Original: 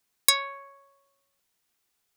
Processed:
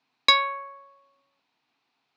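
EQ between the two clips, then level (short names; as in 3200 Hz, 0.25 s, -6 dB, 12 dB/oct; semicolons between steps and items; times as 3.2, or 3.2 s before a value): speaker cabinet 120–4800 Hz, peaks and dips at 140 Hz +9 dB, 260 Hz +9 dB, 2500 Hz +8 dB, 4100 Hz +6 dB; bell 280 Hz +5.5 dB 0.41 oct; bell 890 Hz +11.5 dB 1.1 oct; 0.0 dB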